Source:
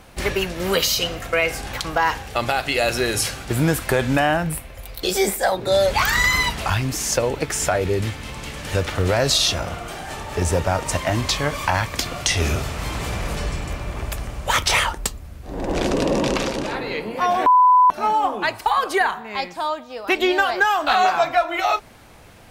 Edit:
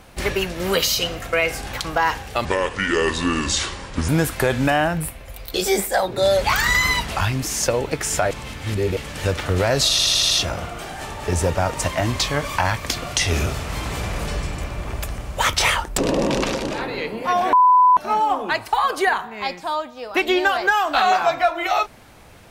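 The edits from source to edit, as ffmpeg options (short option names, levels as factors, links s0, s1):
-filter_complex "[0:a]asplit=11[s0][s1][s2][s3][s4][s5][s6][s7][s8][s9][s10];[s0]atrim=end=2.454[s11];[s1]atrim=start=2.45:end=3.58,asetpts=PTS-STARTPTS,asetrate=30429,aresample=44100[s12];[s2]atrim=start=3.576:end=7.802[s13];[s3]atrim=start=7.798:end=8.462,asetpts=PTS-STARTPTS,areverse[s14];[s4]atrim=start=8.458:end=9.482[s15];[s5]atrim=start=9.398:end=9.482[s16];[s6]atrim=start=9.398:end=9.482[s17];[s7]atrim=start=9.398:end=9.482[s18];[s8]atrim=start=9.398:end=9.482[s19];[s9]atrim=start=9.398:end=15.072[s20];[s10]atrim=start=15.908[s21];[s11][s12]acrossfade=d=0.004:c1=hsin:c2=hsin[s22];[s22][s13]acrossfade=d=0.004:c1=hsin:c2=hsin[s23];[s23][s14]acrossfade=d=0.004:c1=hsin:c2=hsin[s24];[s24][s15]acrossfade=d=0.004:c1=hsin:c2=hsin[s25];[s25][s16]acrossfade=d=0.004:c1=hsin:c2=hsin[s26];[s26][s17]acrossfade=d=0.004:c1=hsin:c2=hsin[s27];[s27][s18]acrossfade=d=0.004:c1=hsin:c2=hsin[s28];[s28][s19]acrossfade=d=0.004:c1=hsin:c2=hsin[s29];[s29][s20]acrossfade=d=0.004:c1=hsin:c2=hsin[s30];[s30][s21]acrossfade=d=0.004:c1=hsin:c2=hsin"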